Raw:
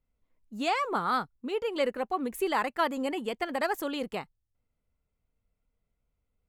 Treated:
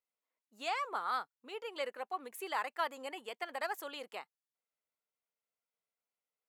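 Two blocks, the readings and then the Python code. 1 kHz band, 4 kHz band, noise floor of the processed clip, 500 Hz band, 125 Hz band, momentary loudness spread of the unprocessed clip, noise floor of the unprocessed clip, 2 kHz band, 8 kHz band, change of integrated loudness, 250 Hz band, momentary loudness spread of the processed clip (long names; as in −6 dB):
−7.5 dB, −6.5 dB, below −85 dBFS, −11.5 dB, below −25 dB, 7 LU, −82 dBFS, −6.5 dB, −6.5 dB, −8.5 dB, −20.0 dB, 9 LU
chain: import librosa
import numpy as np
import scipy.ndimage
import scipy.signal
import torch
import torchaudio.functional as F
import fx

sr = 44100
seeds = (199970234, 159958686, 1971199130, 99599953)

y = scipy.signal.sosfilt(scipy.signal.butter(2, 620.0, 'highpass', fs=sr, output='sos'), x)
y = F.gain(torch.from_numpy(y), -6.5).numpy()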